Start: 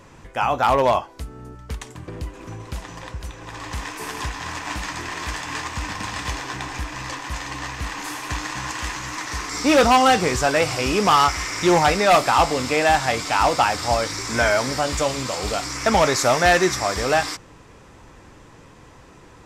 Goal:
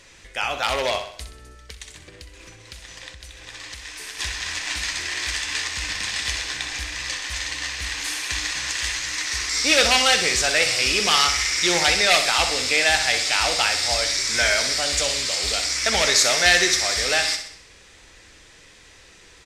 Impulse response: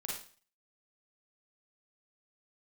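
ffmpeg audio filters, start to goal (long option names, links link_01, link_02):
-filter_complex "[0:a]equalizer=frequency=7500:width=4.5:gain=-5,aecho=1:1:63|126|189|252|315|378:0.355|0.177|0.0887|0.0444|0.0222|0.0111,asplit=3[link_01][link_02][link_03];[link_01]afade=type=out:start_time=1.57:duration=0.02[link_04];[link_02]acompressor=threshold=-34dB:ratio=6,afade=type=in:start_time=1.57:duration=0.02,afade=type=out:start_time=4.18:duration=0.02[link_05];[link_03]afade=type=in:start_time=4.18:duration=0.02[link_06];[link_04][link_05][link_06]amix=inputs=3:normalize=0,equalizer=frequency=125:width_type=o:width=1:gain=-9,equalizer=frequency=250:width_type=o:width=1:gain=-7,equalizer=frequency=1000:width_type=o:width=1:gain=-9,equalizer=frequency=2000:width_type=o:width=1:gain=7,equalizer=frequency=4000:width_type=o:width=1:gain=9,equalizer=frequency=8000:width_type=o:width=1:gain=11,volume=-3.5dB"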